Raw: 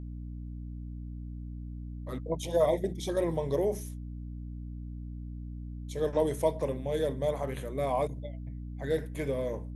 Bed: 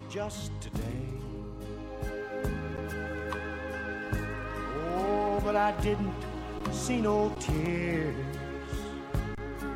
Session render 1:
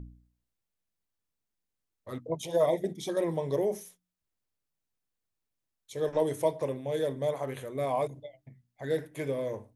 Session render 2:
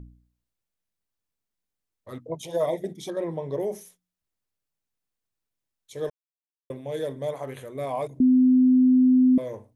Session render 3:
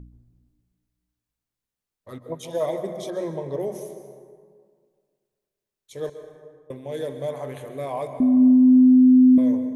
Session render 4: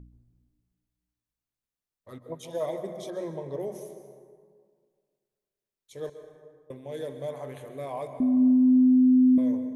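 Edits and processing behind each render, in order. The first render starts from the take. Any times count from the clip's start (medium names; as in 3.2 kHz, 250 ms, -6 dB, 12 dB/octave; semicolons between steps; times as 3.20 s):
de-hum 60 Hz, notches 5
3.10–3.60 s: low-pass 2.1 kHz 6 dB/octave; 6.10–6.70 s: mute; 8.20–9.38 s: bleep 255 Hz -14 dBFS
plate-style reverb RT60 1.9 s, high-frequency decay 0.5×, pre-delay 115 ms, DRR 8 dB
trim -5.5 dB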